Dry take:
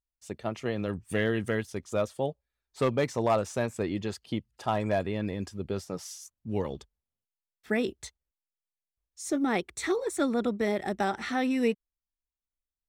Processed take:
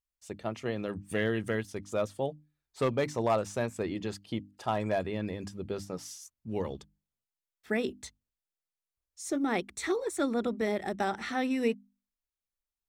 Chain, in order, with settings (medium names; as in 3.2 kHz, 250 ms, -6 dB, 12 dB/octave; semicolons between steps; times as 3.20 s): hum notches 50/100/150/200/250/300 Hz; trim -2 dB